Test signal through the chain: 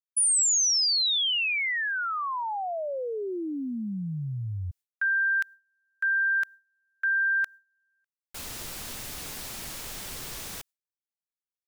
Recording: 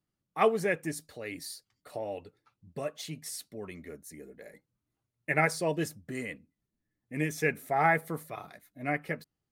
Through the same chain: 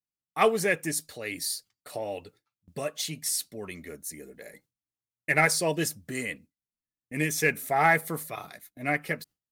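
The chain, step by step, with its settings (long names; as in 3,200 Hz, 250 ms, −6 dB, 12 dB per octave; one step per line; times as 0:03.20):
noise gate with hold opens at −47 dBFS
high-shelf EQ 2,500 Hz +10 dB
in parallel at −11.5 dB: hard clipping −21 dBFS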